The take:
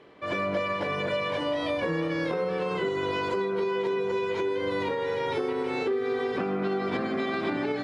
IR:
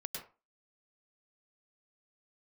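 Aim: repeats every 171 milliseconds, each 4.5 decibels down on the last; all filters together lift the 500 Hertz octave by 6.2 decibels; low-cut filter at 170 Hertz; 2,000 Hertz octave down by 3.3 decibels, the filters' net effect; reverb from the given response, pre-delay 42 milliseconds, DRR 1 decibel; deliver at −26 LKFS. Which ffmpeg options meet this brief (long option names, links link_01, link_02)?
-filter_complex "[0:a]highpass=170,equalizer=frequency=500:width_type=o:gain=8,equalizer=frequency=2000:width_type=o:gain=-4.5,aecho=1:1:171|342|513|684|855|1026|1197|1368|1539:0.596|0.357|0.214|0.129|0.0772|0.0463|0.0278|0.0167|0.01,asplit=2[link_01][link_02];[1:a]atrim=start_sample=2205,adelay=42[link_03];[link_02][link_03]afir=irnorm=-1:irlink=0,volume=0dB[link_04];[link_01][link_04]amix=inputs=2:normalize=0,volume=-4dB"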